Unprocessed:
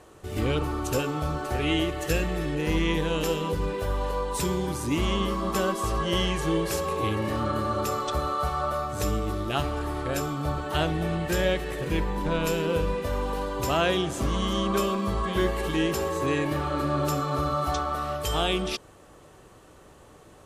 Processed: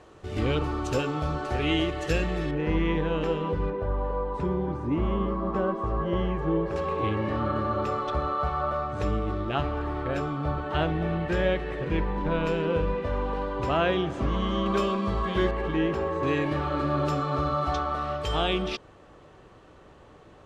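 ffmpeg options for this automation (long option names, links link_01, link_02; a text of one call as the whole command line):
ffmpeg -i in.wav -af "asetnsamples=nb_out_samples=441:pad=0,asendcmd='2.51 lowpass f 2100;3.7 lowpass f 1200;6.76 lowpass f 2600;14.66 lowpass f 4200;15.51 lowpass f 2100;16.23 lowpass f 3900',lowpass=5200" out.wav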